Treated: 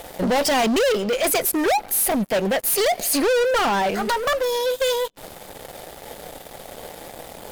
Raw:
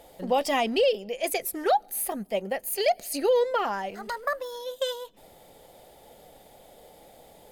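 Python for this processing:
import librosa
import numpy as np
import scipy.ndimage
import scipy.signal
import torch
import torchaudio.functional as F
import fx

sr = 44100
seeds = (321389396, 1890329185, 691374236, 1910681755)

y = fx.leveller(x, sr, passes=5)
y = y * 10.0 ** (-1.5 / 20.0)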